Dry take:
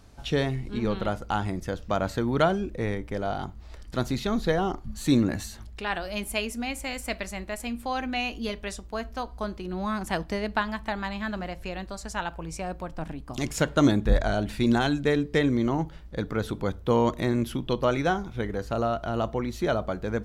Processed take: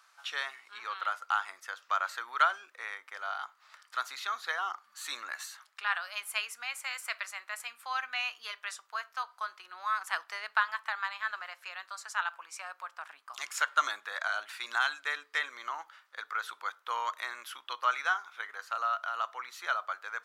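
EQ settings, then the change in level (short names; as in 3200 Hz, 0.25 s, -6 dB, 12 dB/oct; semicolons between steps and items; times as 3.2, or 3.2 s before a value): ladder high-pass 1100 Hz, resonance 55%; +6.0 dB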